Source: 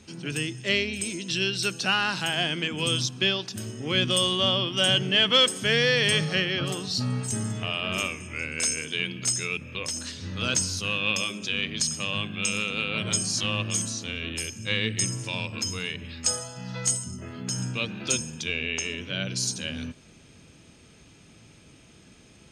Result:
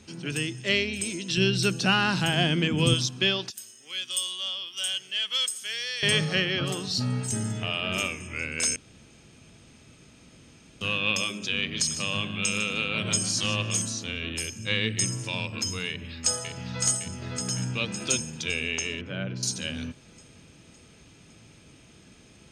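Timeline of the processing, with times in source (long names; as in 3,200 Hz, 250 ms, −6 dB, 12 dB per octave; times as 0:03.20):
0:01.37–0:02.94: low-shelf EQ 350 Hz +11 dB
0:03.50–0:06.03: first difference
0:06.92–0:08.20: notch filter 1,100 Hz
0:08.76–0:10.81: fill with room tone
0:11.57–0:13.81: repeating echo 152 ms, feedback 16%, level −12 dB
0:15.88–0:16.83: delay throw 560 ms, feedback 60%, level −4.5 dB
0:19.01–0:19.43: low-pass filter 1,800 Hz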